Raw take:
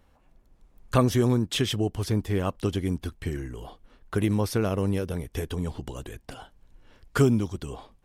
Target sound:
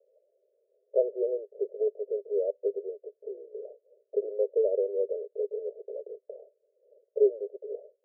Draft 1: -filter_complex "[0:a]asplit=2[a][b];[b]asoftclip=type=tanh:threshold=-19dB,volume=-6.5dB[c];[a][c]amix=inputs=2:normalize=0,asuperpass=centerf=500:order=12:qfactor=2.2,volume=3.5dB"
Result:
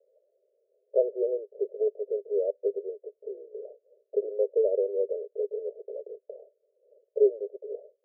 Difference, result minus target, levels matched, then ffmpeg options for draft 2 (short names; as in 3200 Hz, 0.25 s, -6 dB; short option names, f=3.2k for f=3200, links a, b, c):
soft clip: distortion -7 dB
-filter_complex "[0:a]asplit=2[a][b];[b]asoftclip=type=tanh:threshold=-28.5dB,volume=-6.5dB[c];[a][c]amix=inputs=2:normalize=0,asuperpass=centerf=500:order=12:qfactor=2.2,volume=3.5dB"